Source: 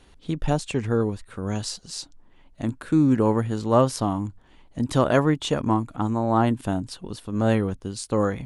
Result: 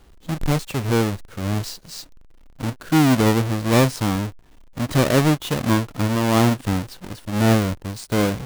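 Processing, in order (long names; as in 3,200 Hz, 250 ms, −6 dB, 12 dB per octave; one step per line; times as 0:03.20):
each half-wave held at its own peak
harmonic and percussive parts rebalanced percussive −6 dB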